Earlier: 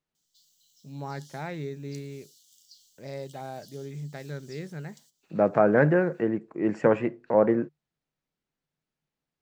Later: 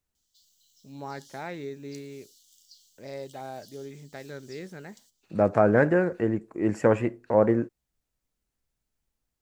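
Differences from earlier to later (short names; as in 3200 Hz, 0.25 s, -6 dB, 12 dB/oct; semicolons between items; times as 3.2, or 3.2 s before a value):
second voice: remove BPF 180–4300 Hz; master: add bell 150 Hz -12.5 dB 0.26 oct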